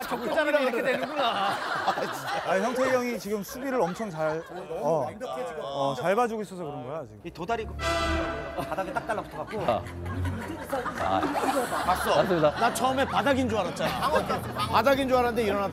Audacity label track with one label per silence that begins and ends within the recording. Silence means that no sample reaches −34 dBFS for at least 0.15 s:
7.040000	7.250000	silence